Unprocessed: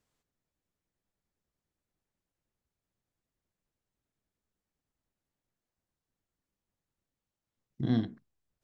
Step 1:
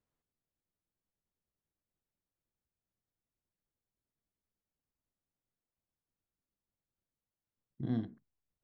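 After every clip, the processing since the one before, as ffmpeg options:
-af "highshelf=f=2700:g=-12,volume=0.501"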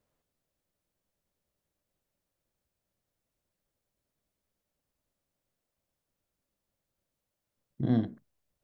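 -af "equalizer=f=580:t=o:w=0.43:g=7,volume=2.37"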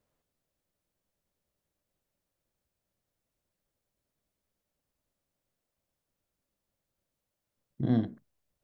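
-af anull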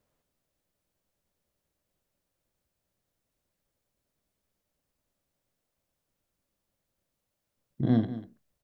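-af "aecho=1:1:192:0.2,volume=1.33"

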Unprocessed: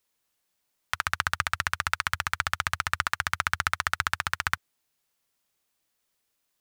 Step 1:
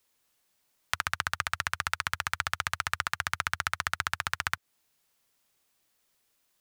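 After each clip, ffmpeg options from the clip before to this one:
-filter_complex "[0:a]acrossover=split=360|1100[s0][s1][s2];[s0]acompressor=threshold=0.00447:ratio=4[s3];[s1]acompressor=threshold=0.01:ratio=4[s4];[s2]acompressor=threshold=0.0251:ratio=4[s5];[s3][s4][s5]amix=inputs=3:normalize=0,volume=1.58"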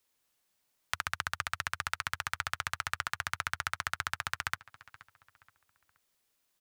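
-filter_complex "[0:a]asplit=2[s0][s1];[s1]adelay=475,lowpass=f=3200:p=1,volume=0.119,asplit=2[s2][s3];[s3]adelay=475,lowpass=f=3200:p=1,volume=0.38,asplit=2[s4][s5];[s5]adelay=475,lowpass=f=3200:p=1,volume=0.38[s6];[s0][s2][s4][s6]amix=inputs=4:normalize=0,volume=0.631"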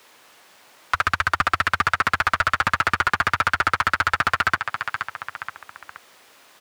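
-filter_complex "[0:a]asplit=2[s0][s1];[s1]highpass=f=720:p=1,volume=56.2,asoftclip=type=tanh:threshold=0.266[s2];[s0][s2]amix=inputs=2:normalize=0,lowpass=f=1300:p=1,volume=0.501,volume=2.51"

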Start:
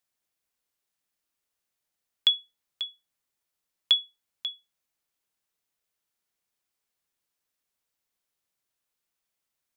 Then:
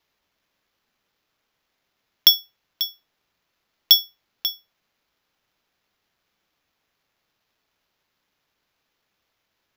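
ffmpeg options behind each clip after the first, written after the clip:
-af "acrusher=samples=5:mix=1:aa=0.000001,volume=2.51"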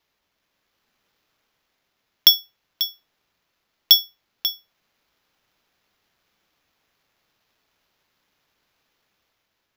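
-af "dynaudnorm=f=210:g=7:m=1.58"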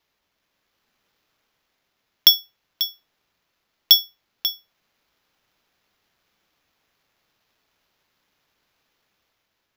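-af anull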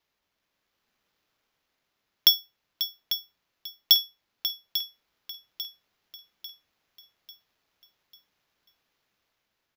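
-af "aecho=1:1:845|1690|2535|3380|4225:0.282|0.132|0.0623|0.0293|0.0138,volume=0.531"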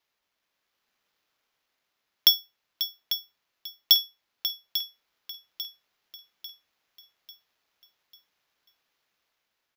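-af "lowshelf=f=350:g=-8.5"

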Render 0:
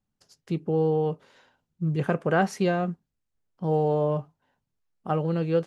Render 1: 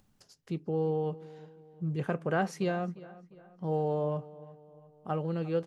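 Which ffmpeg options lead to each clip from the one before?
-filter_complex "[0:a]asplit=2[s0][s1];[s1]adelay=351,lowpass=f=3500:p=1,volume=0.119,asplit=2[s2][s3];[s3]adelay=351,lowpass=f=3500:p=1,volume=0.45,asplit=2[s4][s5];[s5]adelay=351,lowpass=f=3500:p=1,volume=0.45,asplit=2[s6][s7];[s7]adelay=351,lowpass=f=3500:p=1,volume=0.45[s8];[s0][s2][s4][s6][s8]amix=inputs=5:normalize=0,acompressor=mode=upward:threshold=0.00562:ratio=2.5,volume=0.473"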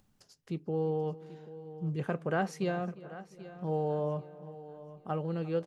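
-af "aecho=1:1:786|1572|2358:0.158|0.0428|0.0116,volume=0.841"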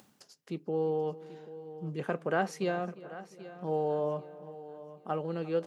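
-af "highpass=220,areverse,acompressor=mode=upward:threshold=0.00501:ratio=2.5,areverse,volume=1.26"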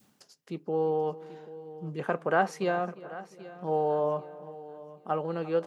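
-af "adynamicequalizer=threshold=0.00501:dfrequency=990:dqfactor=0.75:tfrequency=990:tqfactor=0.75:attack=5:release=100:ratio=0.375:range=3.5:mode=boostabove:tftype=bell"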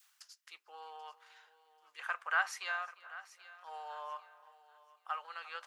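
-af "highpass=f=1200:w=0.5412,highpass=f=1200:w=1.3066,volume=1.12"

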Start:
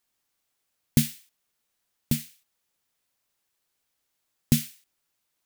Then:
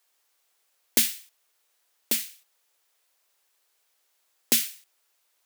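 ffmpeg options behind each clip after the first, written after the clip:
-af "highpass=f=390:w=0.5412,highpass=f=390:w=1.3066,volume=2.24"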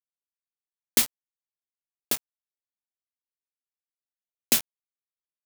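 -af "aeval=exprs='val(0)*gte(abs(val(0)),0.112)':c=same,volume=1.12"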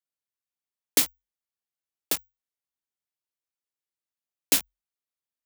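-af "afreqshift=45"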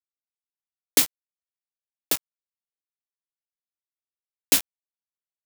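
-af "aeval=exprs='val(0)*gte(abs(val(0)),0.0106)':c=same,volume=1.33"

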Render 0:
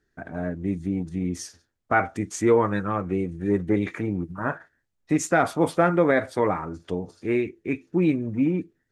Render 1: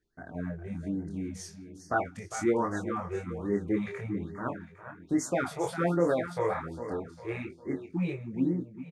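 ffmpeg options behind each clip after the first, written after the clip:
-af "aecho=1:1:403|806|1209|1612:0.282|0.116|0.0474|0.0194,flanger=delay=22.5:depth=2.5:speed=0.37,afftfilt=real='re*(1-between(b*sr/1024,230*pow(3100/230,0.5+0.5*sin(2*PI*1.2*pts/sr))/1.41,230*pow(3100/230,0.5+0.5*sin(2*PI*1.2*pts/sr))*1.41))':imag='im*(1-between(b*sr/1024,230*pow(3100/230,0.5+0.5*sin(2*PI*1.2*pts/sr))/1.41,230*pow(3100/230,0.5+0.5*sin(2*PI*1.2*pts/sr))*1.41))':win_size=1024:overlap=0.75,volume=0.668"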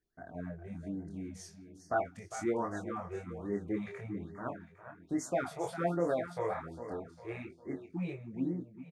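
-af "equalizer=f=680:w=5:g=7,volume=0.473"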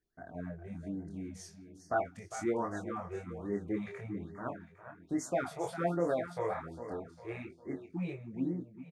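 -af anull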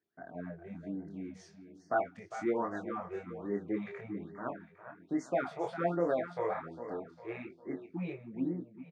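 -af "highpass=170,lowpass=3600,volume=1.12"

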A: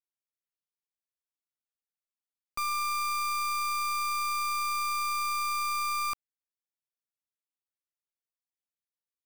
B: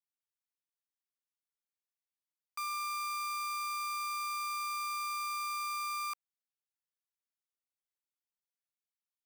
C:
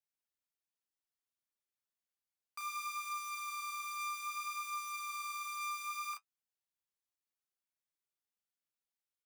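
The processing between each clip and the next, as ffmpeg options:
-af "highpass=f=830:w=0.5412,highpass=f=830:w=1.3066,volume=0.501"
-filter_complex "[0:a]flanger=delay=8.2:depth=4.4:regen=45:speed=0.62:shape=sinusoidal,asplit=2[s0][s1];[s1]adelay=35,volume=0.708[s2];[s0][s2]amix=inputs=2:normalize=0"

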